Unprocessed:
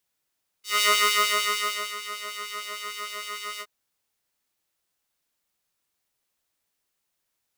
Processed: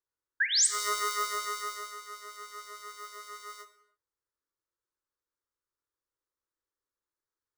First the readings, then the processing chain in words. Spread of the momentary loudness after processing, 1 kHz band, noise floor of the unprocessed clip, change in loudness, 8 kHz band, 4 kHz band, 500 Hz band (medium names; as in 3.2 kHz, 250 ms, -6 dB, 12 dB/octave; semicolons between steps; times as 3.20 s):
20 LU, -7.0 dB, -79 dBFS, -3.0 dB, +1.0 dB, -7.5 dB, -7.5 dB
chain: median filter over 3 samples; painted sound rise, 0.40–0.67 s, 1.5–9.2 kHz -14 dBFS; static phaser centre 710 Hz, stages 6; gated-style reverb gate 340 ms falling, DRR 9 dB; tape noise reduction on one side only decoder only; trim -7 dB